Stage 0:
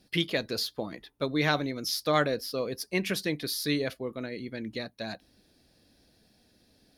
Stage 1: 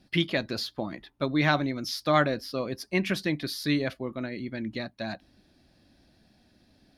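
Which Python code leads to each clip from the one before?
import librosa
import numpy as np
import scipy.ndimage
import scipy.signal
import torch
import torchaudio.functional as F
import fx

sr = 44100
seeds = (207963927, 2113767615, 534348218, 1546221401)

y = fx.lowpass(x, sr, hz=2700.0, slope=6)
y = fx.peak_eq(y, sr, hz=460.0, db=-12.0, octaves=0.25)
y = y * librosa.db_to_amplitude(4.0)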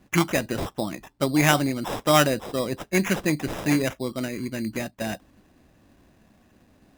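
y = scipy.signal.sosfilt(scipy.signal.butter(2, 11000.0, 'lowpass', fs=sr, output='sos'), x)
y = fx.sample_hold(y, sr, seeds[0], rate_hz=4400.0, jitter_pct=0)
y = y * librosa.db_to_amplitude(4.5)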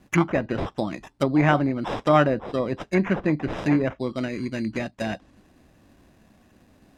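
y = fx.env_lowpass_down(x, sr, base_hz=1600.0, full_db=-21.0)
y = y * librosa.db_to_amplitude(1.5)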